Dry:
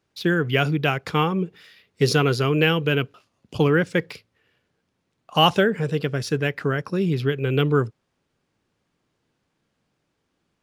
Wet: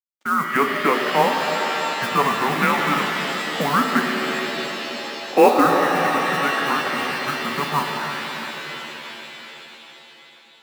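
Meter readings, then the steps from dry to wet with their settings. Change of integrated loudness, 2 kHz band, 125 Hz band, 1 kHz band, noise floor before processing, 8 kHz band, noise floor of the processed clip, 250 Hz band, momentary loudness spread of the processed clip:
+1.5 dB, +5.0 dB, -10.5 dB, +8.5 dB, -75 dBFS, +6.0 dB, -48 dBFS, -0.5 dB, 15 LU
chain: mistuned SSB -290 Hz 370–2200 Hz; crossover distortion -48.5 dBFS; modulation noise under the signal 24 dB; HPF 240 Hz 24 dB/oct; on a send: echo with dull and thin repeats by turns 0.325 s, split 970 Hz, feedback 59%, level -12 dB; on the sum: shimmer reverb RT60 3.7 s, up +7 st, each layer -2 dB, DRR 3 dB; gain +6 dB

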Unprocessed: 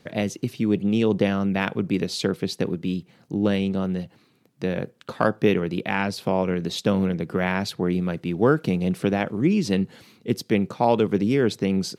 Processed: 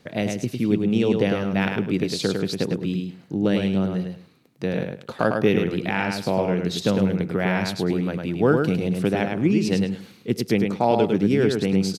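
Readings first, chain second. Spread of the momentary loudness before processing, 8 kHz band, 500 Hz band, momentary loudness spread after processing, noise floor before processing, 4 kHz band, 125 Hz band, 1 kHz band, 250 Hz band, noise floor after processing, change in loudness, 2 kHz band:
8 LU, +1.0 dB, +1.0 dB, 8 LU, -60 dBFS, +1.5 dB, +1.5 dB, 0.0 dB, +1.5 dB, -50 dBFS, +1.0 dB, +1.0 dB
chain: dynamic EQ 1100 Hz, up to -5 dB, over -44 dBFS, Q 4.4; on a send: feedback echo 0.104 s, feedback 20%, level -4.5 dB

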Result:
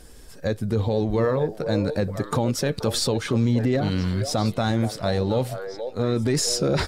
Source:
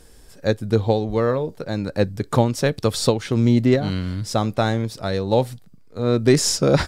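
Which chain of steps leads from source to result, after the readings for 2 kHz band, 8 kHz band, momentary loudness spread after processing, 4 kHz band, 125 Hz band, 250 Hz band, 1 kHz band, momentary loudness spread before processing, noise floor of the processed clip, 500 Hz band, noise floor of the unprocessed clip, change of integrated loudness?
-3.0 dB, -2.0 dB, 6 LU, -1.5 dB, -2.5 dB, -3.0 dB, -4.0 dB, 9 LU, -43 dBFS, -4.0 dB, -47 dBFS, -3.0 dB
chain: bin magnitudes rounded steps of 15 dB; limiter -16 dBFS, peak gain reduction 11.5 dB; delay with a stepping band-pass 0.477 s, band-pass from 560 Hz, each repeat 1.4 oct, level -6 dB; gain +2 dB

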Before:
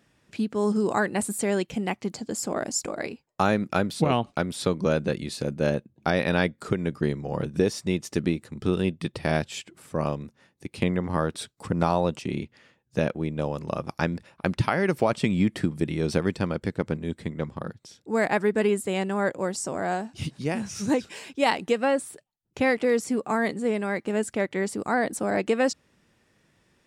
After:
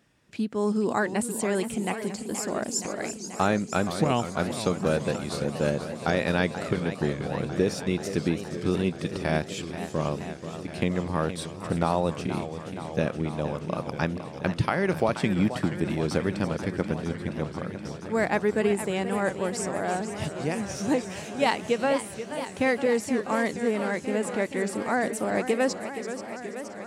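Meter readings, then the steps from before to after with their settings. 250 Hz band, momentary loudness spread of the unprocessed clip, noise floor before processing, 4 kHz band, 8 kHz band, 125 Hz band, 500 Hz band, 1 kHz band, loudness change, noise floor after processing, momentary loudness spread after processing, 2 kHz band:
-1.0 dB, 9 LU, -68 dBFS, -0.5 dB, 0.0 dB, -1.0 dB, -0.5 dB, -0.5 dB, -1.0 dB, -40 dBFS, 8 LU, -0.5 dB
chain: on a send: thin delay 0.336 s, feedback 49%, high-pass 5200 Hz, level -9.5 dB; on the sum: warbling echo 0.477 s, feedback 78%, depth 193 cents, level -11 dB; gain -1.5 dB

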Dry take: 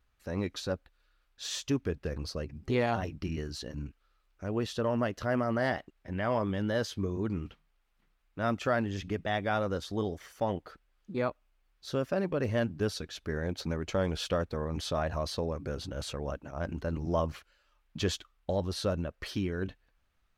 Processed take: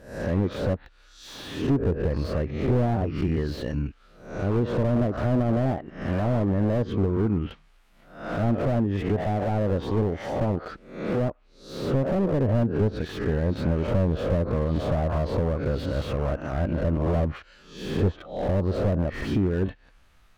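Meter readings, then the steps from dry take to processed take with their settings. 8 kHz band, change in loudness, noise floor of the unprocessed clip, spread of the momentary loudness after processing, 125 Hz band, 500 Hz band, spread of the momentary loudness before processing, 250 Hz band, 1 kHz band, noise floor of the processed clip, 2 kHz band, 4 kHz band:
n/a, +7.5 dB, -73 dBFS, 8 LU, +11.0 dB, +6.0 dB, 8 LU, +8.5 dB, +3.0 dB, -57 dBFS, 0.0 dB, -2.5 dB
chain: spectral swells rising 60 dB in 0.53 s; in parallel at +1.5 dB: compressor 12:1, threshold -43 dBFS, peak gain reduction 21 dB; on the sum: treble ducked by the level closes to 730 Hz, closed at -24 dBFS; slew limiter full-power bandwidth 15 Hz; gain +7 dB

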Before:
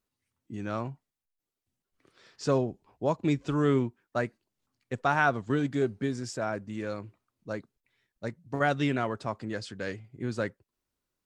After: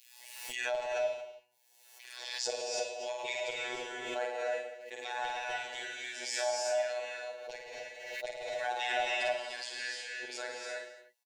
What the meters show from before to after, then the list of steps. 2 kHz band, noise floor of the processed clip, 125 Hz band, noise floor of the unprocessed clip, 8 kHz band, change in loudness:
-1.5 dB, -63 dBFS, under -35 dB, under -85 dBFS, +8.0 dB, -5.0 dB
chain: dynamic EQ 660 Hz, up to +5 dB, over -44 dBFS, Q 6.3; LFO high-pass saw down 4 Hz 680–3000 Hz; limiter -22 dBFS, peak gain reduction 12 dB; comb 4.6 ms, depth 75%; robotiser 123 Hz; fixed phaser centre 510 Hz, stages 4; on a send: reverse bouncing-ball echo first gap 50 ms, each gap 1.1×, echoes 5; on the sum: non-linear reverb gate 0.35 s rising, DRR -1.5 dB; backwards sustainer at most 44 dB/s

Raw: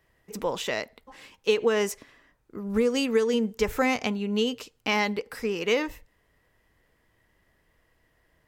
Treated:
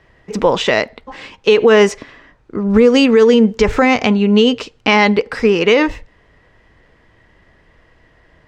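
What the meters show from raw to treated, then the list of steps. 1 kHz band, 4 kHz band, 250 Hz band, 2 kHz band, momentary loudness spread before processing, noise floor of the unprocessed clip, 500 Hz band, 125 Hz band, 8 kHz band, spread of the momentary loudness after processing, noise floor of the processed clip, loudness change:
+13.5 dB, +12.5 dB, +15.0 dB, +13.0 dB, 11 LU, -69 dBFS, +14.0 dB, +16.0 dB, +6.5 dB, 10 LU, -53 dBFS, +14.0 dB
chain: air absorption 120 m; maximiser +17.5 dB; gain -1 dB

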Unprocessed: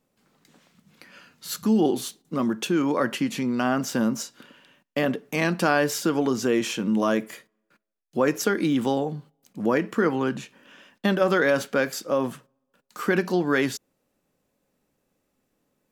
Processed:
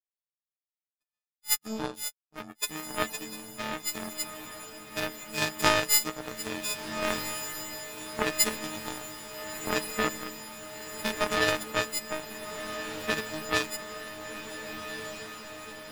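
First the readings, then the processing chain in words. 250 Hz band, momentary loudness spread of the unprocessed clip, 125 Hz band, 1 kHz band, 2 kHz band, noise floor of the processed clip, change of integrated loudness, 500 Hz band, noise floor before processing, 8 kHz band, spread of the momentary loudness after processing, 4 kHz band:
-14.0 dB, 10 LU, -11.0 dB, -4.5 dB, -3.0 dB, under -85 dBFS, -6.5 dB, -9.5 dB, -76 dBFS, +4.0 dB, 14 LU, +3.0 dB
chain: frequency quantiser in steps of 6 st; power-law curve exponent 3; diffused feedback echo 1.489 s, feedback 68%, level -9 dB; gain +4 dB

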